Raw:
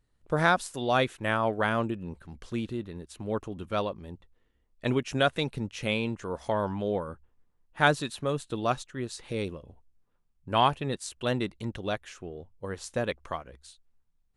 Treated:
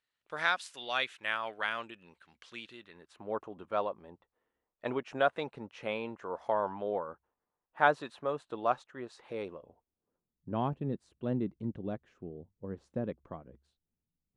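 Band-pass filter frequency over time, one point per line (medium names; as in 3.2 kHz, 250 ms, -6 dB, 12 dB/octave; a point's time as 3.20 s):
band-pass filter, Q 1
2.81 s 2.7 kHz
3.22 s 850 Hz
9.50 s 850 Hz
10.58 s 210 Hz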